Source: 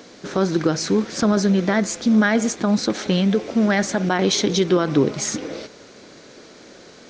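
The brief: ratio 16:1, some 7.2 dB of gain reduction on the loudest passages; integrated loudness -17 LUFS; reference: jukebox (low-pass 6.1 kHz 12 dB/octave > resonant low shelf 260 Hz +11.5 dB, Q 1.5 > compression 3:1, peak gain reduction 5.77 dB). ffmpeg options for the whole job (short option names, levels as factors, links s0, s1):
-af "acompressor=threshold=0.1:ratio=16,lowpass=6100,lowshelf=f=260:t=q:w=1.5:g=11.5,acompressor=threshold=0.158:ratio=3,volume=1.5"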